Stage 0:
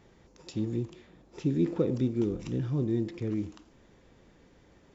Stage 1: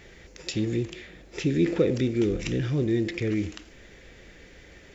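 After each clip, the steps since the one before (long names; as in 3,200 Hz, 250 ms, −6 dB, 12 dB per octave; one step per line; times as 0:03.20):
in parallel at −3 dB: brickwall limiter −26.5 dBFS, peak gain reduction 11.5 dB
on the sum: octave-band graphic EQ 125/250/1,000/2,000 Hz −7/−7/−12/+8 dB
level +8 dB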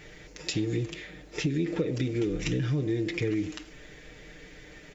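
comb filter 6.6 ms, depth 66%
downward compressor 12 to 1, threshold −24 dBFS, peak gain reduction 11 dB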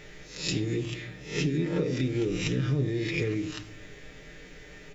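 peak hold with a rise ahead of every peak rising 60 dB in 0.48 s
convolution reverb RT60 0.65 s, pre-delay 5 ms, DRR 7.5 dB
level −1.5 dB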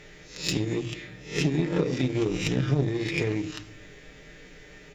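harmonic generator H 7 −24 dB, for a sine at −11.5 dBFS
mains-hum notches 60/120 Hz
level +4.5 dB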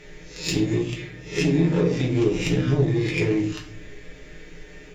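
rectangular room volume 37 cubic metres, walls mixed, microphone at 0.5 metres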